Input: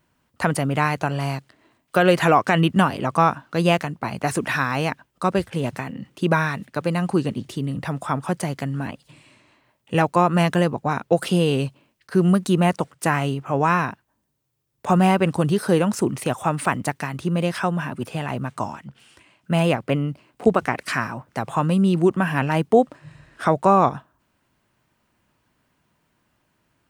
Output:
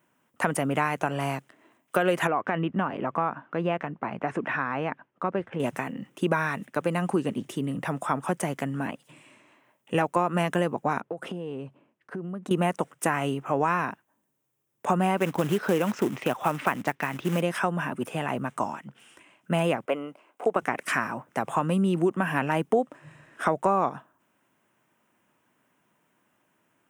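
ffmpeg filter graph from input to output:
-filter_complex "[0:a]asettb=1/sr,asplit=3[s0][s1][s2];[s0]atrim=end=2.274[s3];[s1]atrim=start=2.27:end=5.6,asetpts=PTS-STARTPTS,afade=t=in:d=0.004:c=qsin,afade=t=out:st=3.326:d=0.004:c=qsin,lowpass=2200,acompressor=threshold=0.0355:ratio=1.5:attack=3.2:release=140:knee=1:detection=peak[s4];[s2]atrim=start=5.596[s5];[s3][s4]acrossfade=d=0.004:c1=hsin:c2=qsin[s6];[s6][s5]acrossfade=d=0.004:c1=qsin:c2=hsin,asettb=1/sr,asplit=3[s7][s8][s9];[s7]atrim=end=11.014[s10];[s8]atrim=start=11.01:end=12.51,asetpts=PTS-STARTPTS,afade=t=in:d=0.004:c=qsin,afade=t=out:st=1.496:d=0.004:c=qsin,lowpass=f=1100:p=1,acompressor=threshold=0.0398:ratio=12:attack=3.2:release=140:knee=1:detection=peak[s11];[s9]atrim=start=12.506[s12];[s10][s11]acrossfade=d=0.004:c1=hsin:c2=qsin[s13];[s13][s12]acrossfade=d=0.004:c1=qsin:c2=hsin,asettb=1/sr,asplit=3[s14][s15][s16];[s14]atrim=end=15.174[s17];[s15]atrim=start=15.17:end=17.41,asetpts=PTS-STARTPTS,afade=t=in:d=0.004:c=qsin,afade=t=out:st=2.236:d=0.004:c=qsin,lowpass=f=4900:w=0.5412,lowpass=f=4900:w=1.3066,acrusher=bits=4:mode=log:mix=0:aa=0.000001,equalizer=f=2400:t=o:w=1.5:g=2.5[s18];[s16]atrim=start=17.406[s19];[s17][s18]acrossfade=d=0.004:c1=hsin:c2=qsin[s20];[s20][s19]acrossfade=d=0.004:c1=qsin:c2=hsin,asettb=1/sr,asplit=3[s21][s22][s23];[s21]atrim=end=19.854[s24];[s22]atrim=start=19.85:end=20.56,asetpts=PTS-STARTPTS,afade=t=in:d=0.004:c=qsin,afade=t=out:st=0.706:d=0.004:c=qsin,highpass=600,tiltshelf=f=1400:g=5,bandreject=f=1800:w=14[s25];[s23]atrim=start=20.556[s26];[s24][s25]acrossfade=d=0.004:c1=hsin:c2=qsin[s27];[s27][s26]acrossfade=d=0.004:c1=qsin:c2=hsin,highpass=200,equalizer=f=4400:t=o:w=0.45:g=-13.5,acompressor=threshold=0.0891:ratio=3"

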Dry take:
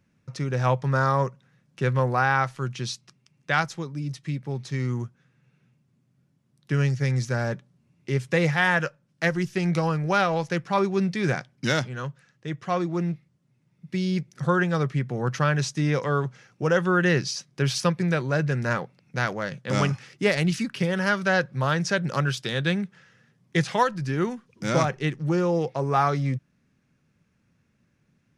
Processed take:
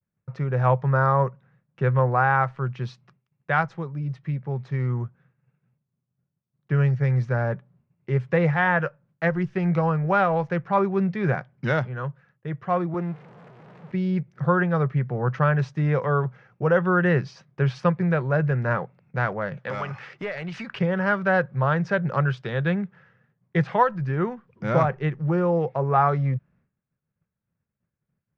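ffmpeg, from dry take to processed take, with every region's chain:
-filter_complex "[0:a]asettb=1/sr,asplit=3[s0][s1][s2];[s0]atrim=end=12.944[s3];[s1]atrim=start=12.94:end=13.92,asetpts=PTS-STARTPTS,afade=t=in:d=0.004:c=qsin,afade=t=out:st=0.976:d=0.004:c=qsin,aeval=exprs='val(0)+0.5*0.0112*sgn(val(0))':c=same,highpass=210[s4];[s2]atrim=start=13.916[s5];[s3][s4]acrossfade=d=0.004:c1=hsin:c2=qsin[s6];[s6][s5]acrossfade=d=0.004:c1=qsin:c2=hsin,asettb=1/sr,asplit=3[s7][s8][s9];[s7]atrim=end=19.574[s10];[s8]atrim=start=19.57:end=20.79,asetpts=PTS-STARTPTS,afade=t=in:d=0.004:c=qsin,afade=t=out:st=1.216:d=0.004:c=qsin,highshelf=f=3100:g=7.5,acompressor=threshold=0.0398:ratio=12:attack=3.2:release=140:knee=1:detection=peak,asplit=2[s11][s12];[s12]highpass=f=720:p=1,volume=4.47,asoftclip=type=tanh:threshold=0.15[s13];[s11][s13]amix=inputs=2:normalize=0,lowpass=f=5500:p=1,volume=0.501[s14];[s9]atrim=start=20.786[s15];[s10][s14]acrossfade=d=0.004:c1=hsin:c2=qsin[s16];[s16][s15]acrossfade=d=0.004:c1=qsin:c2=hsin,lowpass=1500,agate=range=0.0224:threshold=0.00158:ratio=3:detection=peak,equalizer=f=280:t=o:w=0.6:g=-10,volume=1.5"

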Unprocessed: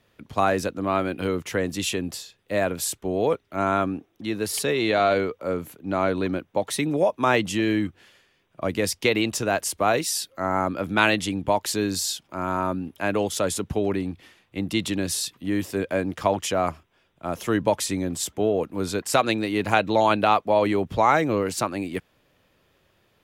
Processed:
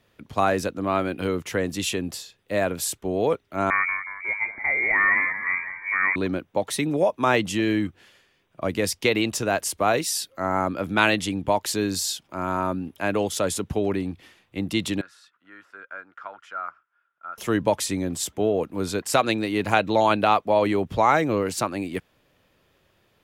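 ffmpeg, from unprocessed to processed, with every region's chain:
-filter_complex "[0:a]asettb=1/sr,asplit=3[s0][s1][s2];[s0]atrim=end=3.704[s3];[s1]atrim=start=3.7:end=6.16,asetpts=PTS-STARTPTS,afade=t=in:d=0.004:c=qsin,afade=t=out:st=2.456:d=0.004:c=qsin,lowpass=f=2100:t=q:w=0.5098,lowpass=f=2100:t=q:w=0.6013,lowpass=f=2100:t=q:w=0.9,lowpass=f=2100:t=q:w=2.563,afreqshift=-2500,asplit=6[s4][s5][s6][s7][s8][s9];[s5]adelay=181,afreqshift=-57,volume=0.316[s10];[s6]adelay=362,afreqshift=-114,volume=0.148[s11];[s7]adelay=543,afreqshift=-171,volume=0.07[s12];[s8]adelay=724,afreqshift=-228,volume=0.0327[s13];[s9]adelay=905,afreqshift=-285,volume=0.0155[s14];[s4][s10][s11][s12][s13][s14]amix=inputs=6:normalize=0,atrim=end_sample=108486[s15];[s2]atrim=start=6.156[s16];[s3][s15]acrossfade=d=0.004:c1=hsin:c2=qsin[s17];[s17][s16]acrossfade=d=0.004:c1=qsin:c2=hsin,asettb=1/sr,asplit=3[s18][s19][s20];[s18]atrim=end=15.014[s21];[s19]atrim=start=15.01:end=17.38,asetpts=PTS-STARTPTS,afade=t=in:d=0.004:c=qsin,afade=t=out:st=2.366:d=0.004:c=qsin,bandpass=f=1400:t=q:w=12,acontrast=57[s22];[s20]atrim=start=17.376[s23];[s21][s22]acrossfade=d=0.004:c1=hsin:c2=qsin[s24];[s24][s23]acrossfade=d=0.004:c1=qsin:c2=hsin"

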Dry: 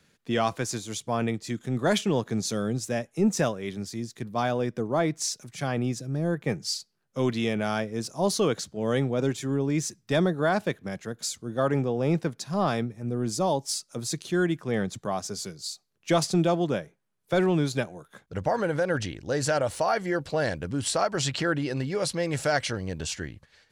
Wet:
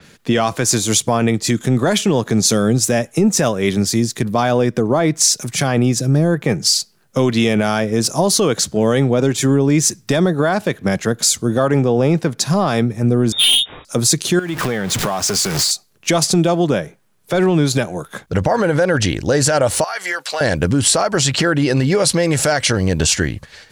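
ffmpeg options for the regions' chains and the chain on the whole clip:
-filter_complex "[0:a]asettb=1/sr,asplit=3[s0][s1][s2];[s0]atrim=end=13.324[s3];[s1]atrim=start=13.32:end=13.85,asetpts=PTS-STARTPTS,afade=t=in:d=0.004:c=qsin,afade=t=out:st=0.526:d=0.004:c=qsin,asplit=2[s4][s5];[s5]adelay=38,volume=0.531[s6];[s4][s6]amix=inputs=2:normalize=0,atrim=end_sample=23373,lowpass=f=3200:t=q:w=0.5098,lowpass=f=3200:t=q:w=0.6013,lowpass=f=3200:t=q:w=0.9,lowpass=f=3200:t=q:w=2.563,afreqshift=-3800,aeval=exprs='(tanh(25.1*val(0)+0.05)-tanh(0.05))/25.1':c=same[s7];[s2]atrim=start=13.846[s8];[s3][s7]acrossfade=d=0.004:c1=hsin:c2=qsin[s9];[s9][s8]acrossfade=d=0.004:c1=qsin:c2=hsin,asettb=1/sr,asplit=3[s10][s11][s12];[s10]atrim=end=14.394[s13];[s11]atrim=start=14.39:end=15.71,asetpts=PTS-STARTPTS,afade=t=in:d=0.004:c=qsin,afade=t=out:st=1.316:d=0.004:c=qsin,aeval=exprs='val(0)+0.5*0.0158*sgn(val(0))':c=same,equalizer=f=1900:w=0.42:g=6.5,acompressor=threshold=0.02:ratio=16:attack=3.2:release=140:knee=1:detection=peak[s14];[s12]atrim=start=15.706[s15];[s13][s14]acrossfade=d=0.004:c1=hsin:c2=qsin[s16];[s16][s15]acrossfade=d=0.004:c1=qsin:c2=hsin,asettb=1/sr,asplit=3[s17][s18][s19];[s17]atrim=end=19.844[s20];[s18]atrim=start=19.84:end=20.41,asetpts=PTS-STARTPTS,afade=t=in:d=0.004:c=qsin,afade=t=out:st=0.566:d=0.004:c=qsin,highpass=1200,acompressor=threshold=0.0178:ratio=12:attack=3.2:release=140:knee=1:detection=peak[s21];[s19]atrim=start=20.406[s22];[s20][s21]acrossfade=d=0.004:c1=hsin:c2=qsin[s23];[s23][s22]acrossfade=d=0.004:c1=qsin:c2=hsin,acompressor=threshold=0.0355:ratio=5,alimiter=level_in=15:limit=0.891:release=50:level=0:latency=1,adynamicequalizer=threshold=0.0631:dfrequency=5900:dqfactor=0.7:tfrequency=5900:tqfactor=0.7:attack=5:release=100:ratio=0.375:range=2.5:mode=boostabove:tftype=highshelf,volume=0.562"

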